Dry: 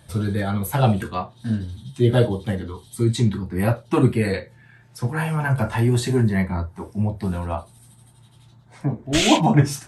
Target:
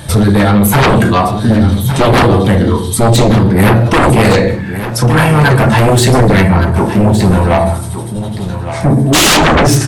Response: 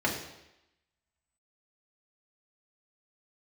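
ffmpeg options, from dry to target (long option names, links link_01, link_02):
-filter_complex "[0:a]asplit=2[link_01][link_02];[1:a]atrim=start_sample=2205,afade=type=out:start_time=0.23:duration=0.01,atrim=end_sample=10584,adelay=27[link_03];[link_02][link_03]afir=irnorm=-1:irlink=0,volume=-18dB[link_04];[link_01][link_04]amix=inputs=2:normalize=0,aeval=exprs='0.794*sin(PI/2*6.31*val(0)/0.794)':channel_layout=same,alimiter=limit=-7dB:level=0:latency=1:release=20,asplit=2[link_05][link_06];[link_06]aecho=0:1:1164:0.299[link_07];[link_05][link_07]amix=inputs=2:normalize=0,volume=2.5dB"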